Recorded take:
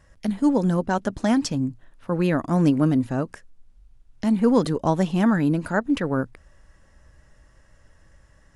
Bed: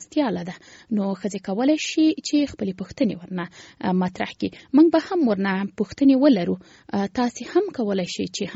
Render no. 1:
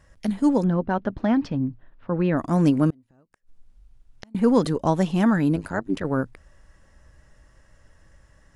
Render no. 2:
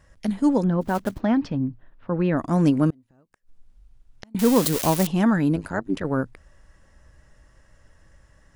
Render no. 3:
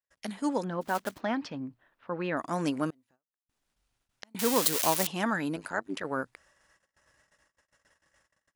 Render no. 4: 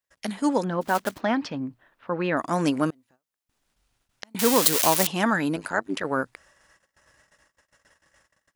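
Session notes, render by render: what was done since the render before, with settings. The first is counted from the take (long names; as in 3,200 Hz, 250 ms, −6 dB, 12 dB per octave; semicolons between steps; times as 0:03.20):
0:00.64–0:02.37: high-frequency loss of the air 320 metres; 0:02.90–0:04.35: gate with flip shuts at −22 dBFS, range −34 dB; 0:05.56–0:06.05: amplitude modulation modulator 99 Hz, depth 80%
0:00.81–0:01.22: one scale factor per block 5 bits; 0:04.39–0:05.07: spike at every zero crossing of −13 dBFS
noise gate −51 dBFS, range −35 dB; high-pass filter 1,000 Hz 6 dB per octave
level +6.5 dB; brickwall limiter −3 dBFS, peak gain reduction 1.5 dB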